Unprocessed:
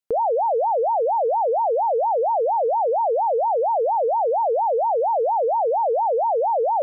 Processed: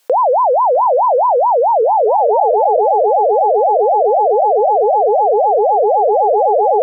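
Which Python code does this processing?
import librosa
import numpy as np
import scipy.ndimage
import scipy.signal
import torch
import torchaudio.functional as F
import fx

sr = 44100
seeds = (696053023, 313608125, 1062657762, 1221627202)

y = fx.fade_out_tail(x, sr, length_s=1.21)
y = fx.doppler_pass(y, sr, speed_mps=31, closest_m=10.0, pass_at_s=1.74)
y = scipy.signal.sosfilt(scipy.signal.butter(4, 380.0, 'highpass', fs=sr, output='sos'), y)
y = y + 10.0 ** (-8.5 / 20.0) * np.pad(y, (int(656 * sr / 1000.0), 0))[:len(y)]
y = fx.env_flatten(y, sr, amount_pct=100)
y = y * 10.0 ** (8.0 / 20.0)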